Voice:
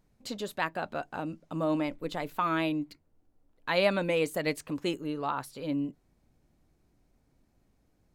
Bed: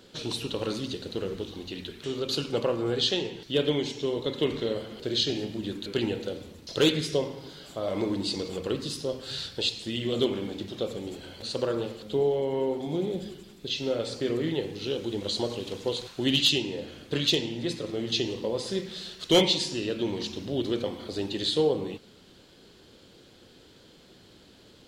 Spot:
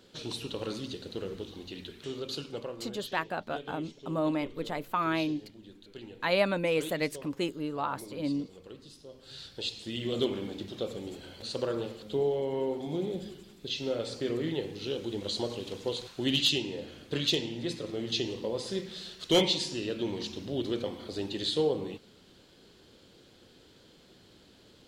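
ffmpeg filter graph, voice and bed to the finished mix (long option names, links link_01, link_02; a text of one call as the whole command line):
ffmpeg -i stem1.wav -i stem2.wav -filter_complex "[0:a]adelay=2550,volume=-0.5dB[link_01];[1:a]volume=9.5dB,afade=type=out:start_time=2.04:duration=0.87:silence=0.223872,afade=type=in:start_time=9.1:duration=0.97:silence=0.188365[link_02];[link_01][link_02]amix=inputs=2:normalize=0" out.wav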